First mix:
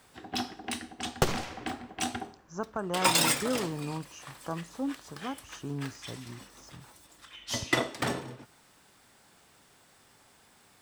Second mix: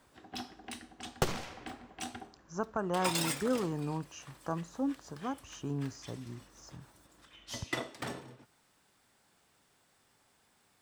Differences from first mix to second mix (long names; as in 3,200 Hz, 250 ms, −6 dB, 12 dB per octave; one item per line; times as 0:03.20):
first sound −9.0 dB
second sound −4.5 dB